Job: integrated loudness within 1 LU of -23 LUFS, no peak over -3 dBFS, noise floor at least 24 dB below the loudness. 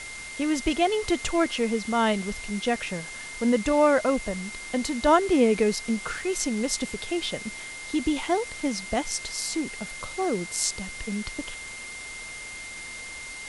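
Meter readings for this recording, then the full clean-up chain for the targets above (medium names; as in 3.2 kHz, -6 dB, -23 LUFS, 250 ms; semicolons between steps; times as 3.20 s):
steady tone 2.1 kHz; tone level -38 dBFS; noise floor -39 dBFS; noise floor target -51 dBFS; loudness -27.0 LUFS; peak level -7.5 dBFS; loudness target -23.0 LUFS
-> band-stop 2.1 kHz, Q 30; noise reduction 12 dB, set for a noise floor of -39 dBFS; trim +4 dB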